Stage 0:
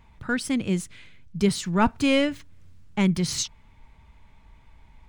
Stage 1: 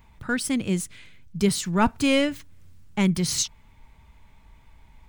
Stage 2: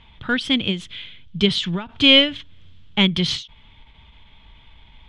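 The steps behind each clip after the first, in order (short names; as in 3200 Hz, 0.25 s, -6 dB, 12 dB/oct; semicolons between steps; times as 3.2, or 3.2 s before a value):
high shelf 9100 Hz +11 dB
synth low-pass 3300 Hz, resonance Q 7.7; ending taper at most 160 dB/s; gain +3.5 dB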